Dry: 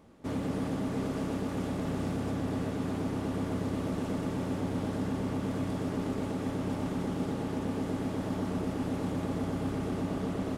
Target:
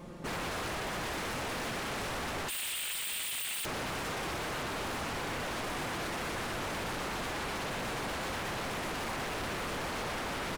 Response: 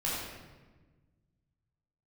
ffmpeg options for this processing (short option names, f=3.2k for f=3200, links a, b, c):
-filter_complex "[0:a]asoftclip=type=tanh:threshold=-31dB,asplit=2[a][b];[1:a]atrim=start_sample=2205,atrim=end_sample=3087[c];[b][c]afir=irnorm=-1:irlink=0,volume=-9.5dB[d];[a][d]amix=inputs=2:normalize=0,asettb=1/sr,asplit=3[e][f][g];[e]atrim=end=2.484[h];[f]atrim=start=2.48:end=3.65,asetpts=PTS-STARTPTS,afade=t=in:d=0.004:c=qsin,afade=t=out:st=1.166:d=0.004:c=qsin,lowpass=f=2.7k:t=q:w=0.5098,lowpass=f=2.7k:t=q:w=0.6013,lowpass=f=2.7k:t=q:w=0.9,lowpass=f=2.7k:t=q:w=2.563,afreqshift=-3200[i];[g]atrim=start=3.646[j];[h][i]acrossfade=d=0.004:c1=hsin:c2=qsin[k];[k][j]acrossfade=d=0.004:c1=qsin:c2=hsin,aecho=1:1:5.7:0.87,aeval=exprs='0.0119*(abs(mod(val(0)/0.0119+3,4)-2)-1)':c=same,volume=7dB"